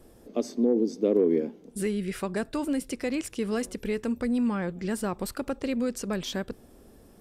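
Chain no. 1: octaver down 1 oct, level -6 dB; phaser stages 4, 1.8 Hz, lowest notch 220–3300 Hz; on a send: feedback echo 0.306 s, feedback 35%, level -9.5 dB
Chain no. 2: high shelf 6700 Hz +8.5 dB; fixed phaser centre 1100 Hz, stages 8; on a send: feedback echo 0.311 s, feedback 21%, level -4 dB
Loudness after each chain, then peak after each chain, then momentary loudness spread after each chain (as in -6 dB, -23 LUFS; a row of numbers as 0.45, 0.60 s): -29.5, -31.0 LUFS; -10.5, -14.0 dBFS; 11, 11 LU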